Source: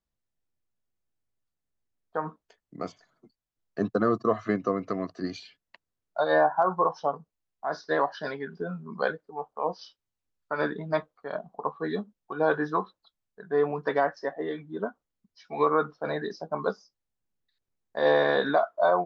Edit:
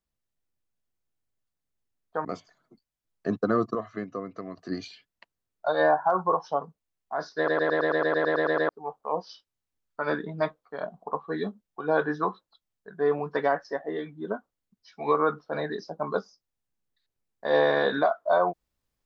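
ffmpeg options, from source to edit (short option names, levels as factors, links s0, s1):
-filter_complex "[0:a]asplit=16[s0][s1][s2][s3][s4][s5][s6][s7][s8][s9][s10][s11][s12][s13][s14][s15];[s0]atrim=end=2.252[s16];[s1]atrim=start=2.768:end=4.272[s17];[s2]atrim=start=4.268:end=5.102,asetpts=PTS-STARTPTS,volume=0.422[s18];[s3]atrim=start=5.098:end=8.002[s19];[s4]atrim=start=7.888:end=8.002[s20];[s5]atrim=start=7.888:end=8.002[s21];[s6]atrim=start=7.888:end=8.002[s22];[s7]atrim=start=7.888:end=8.002[s23];[s8]atrim=start=7.888:end=8.002[s24];[s9]atrim=start=7.888:end=8.002[s25];[s10]atrim=start=7.888:end=8.002[s26];[s11]atrim=start=7.888:end=8.002[s27];[s12]atrim=start=7.888:end=8.002[s28];[s13]atrim=start=7.888:end=8.002[s29];[s14]atrim=start=7.888:end=8.002[s30];[s15]atrim=start=9.208[s31];[s16][s17]acrossfade=d=0.004:c1=hsin:c2=hsin[s32];[s32][s18]acrossfade=d=0.004:c1=hsin:c2=hsin[s33];[s33][s19]acrossfade=d=0.004:c1=hsin:c2=hsin[s34];[s34][s20]acrossfade=d=0.004:c1=hsin:c2=hsin[s35];[s35][s21]acrossfade=d=0.004:c1=hsin:c2=hsin[s36];[s36][s22]acrossfade=d=0.004:c1=hsin:c2=hsin[s37];[s37][s23]acrossfade=d=0.004:c1=hsin:c2=hsin[s38];[s38][s24]acrossfade=d=0.004:c1=hsin:c2=hsin[s39];[s39][s25]acrossfade=d=0.004:c1=hsin:c2=hsin[s40];[s40][s26]acrossfade=d=0.004:c1=hsin:c2=hsin[s41];[s41][s27]acrossfade=d=0.004:c1=hsin:c2=hsin[s42];[s42][s28]acrossfade=d=0.004:c1=hsin:c2=hsin[s43];[s43][s29]acrossfade=d=0.004:c1=hsin:c2=hsin[s44];[s44][s30]acrossfade=d=0.004:c1=hsin:c2=hsin[s45];[s45][s31]acrossfade=d=0.004:c1=hsin:c2=hsin"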